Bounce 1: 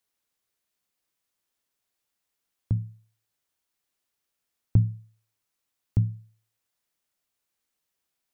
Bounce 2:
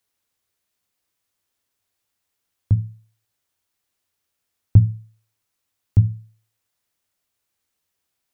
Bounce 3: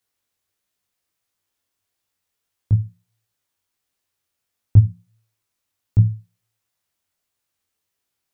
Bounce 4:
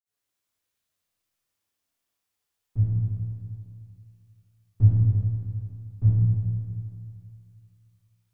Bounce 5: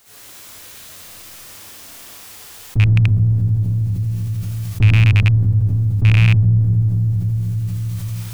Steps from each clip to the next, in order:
peaking EQ 94 Hz +11.5 dB 0.27 oct; trim +4 dB
chorus 1.5 Hz, delay 17.5 ms, depth 5.6 ms; trim +2 dB
reverberation RT60 2.5 s, pre-delay 48 ms; trim +8 dB
rattle on loud lows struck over -19 dBFS, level -18 dBFS; level flattener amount 70%; trim +3.5 dB

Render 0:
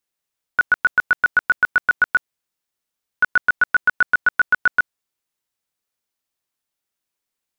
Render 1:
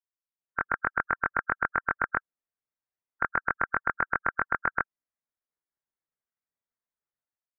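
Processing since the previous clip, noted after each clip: spectral gate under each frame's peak -10 dB weak; level rider gain up to 10 dB; steep low-pass 2.1 kHz 48 dB/octave; trim -8.5 dB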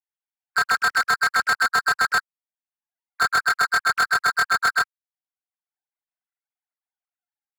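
formants replaced by sine waves; waveshaping leveller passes 5; three bands compressed up and down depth 40%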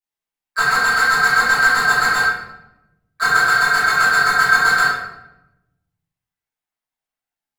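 reverberation RT60 0.90 s, pre-delay 5 ms, DRR -11.5 dB; trim -7 dB

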